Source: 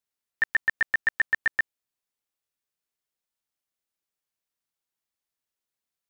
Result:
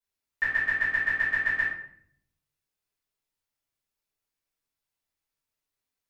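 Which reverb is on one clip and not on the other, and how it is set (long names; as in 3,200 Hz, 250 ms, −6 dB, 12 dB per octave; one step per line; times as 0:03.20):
rectangular room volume 110 cubic metres, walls mixed, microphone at 3.3 metres
level −10 dB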